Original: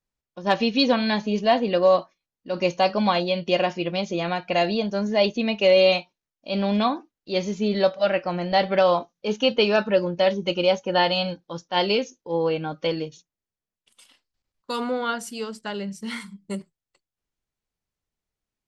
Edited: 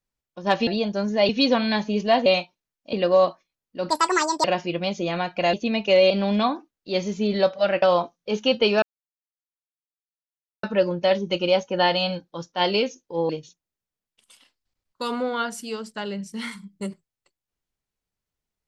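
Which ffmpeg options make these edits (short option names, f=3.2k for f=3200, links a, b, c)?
-filter_complex "[0:a]asplit=12[a][b][c][d][e][f][g][h][i][j][k][l];[a]atrim=end=0.672[m];[b]atrim=start=4.648:end=5.272[n];[c]atrim=start=0.668:end=1.642[o];[d]atrim=start=5.838:end=6.512[p];[e]atrim=start=1.638:end=2.614[q];[f]atrim=start=2.61:end=3.56,asetpts=PTS-STARTPTS,asetrate=77175,aresample=44100[r];[g]atrim=start=3.556:end=4.652[s];[h]atrim=start=5.268:end=5.842[t];[i]atrim=start=6.508:end=8.232[u];[j]atrim=start=8.788:end=9.79,asetpts=PTS-STARTPTS,afade=t=out:st=0.998:d=0.004:c=hsin,apad=pad_dur=1.81[v];[k]atrim=start=9.79:end=12.452,asetpts=PTS-STARTPTS,afade=t=in:d=0.004:c=hsin[w];[l]atrim=start=12.978[x];[m][n]acrossfade=d=0.004:c1=hsin:c2=hsin[y];[y][o]acrossfade=d=0.004:c1=hsin:c2=hsin[z];[z][p]acrossfade=d=0.004:c1=hsin:c2=hsin[aa];[aa][q]acrossfade=d=0.004:c1=hsin:c2=hsin[ab];[ab][r]acrossfade=d=0.004:c1=hsin:c2=hsin[ac];[ac][s]acrossfade=d=0.004:c1=hsin:c2=hsin[ad];[ad][t]acrossfade=d=0.004:c1=hsin:c2=hsin[ae];[ae][u]acrossfade=d=0.004:c1=hsin:c2=hsin[af];[v][w]concat=n=2:v=0:a=1[ag];[af][ag]acrossfade=d=0.004:c1=hsin:c2=hsin[ah];[ah][x]acrossfade=d=0.004:c1=hsin:c2=hsin"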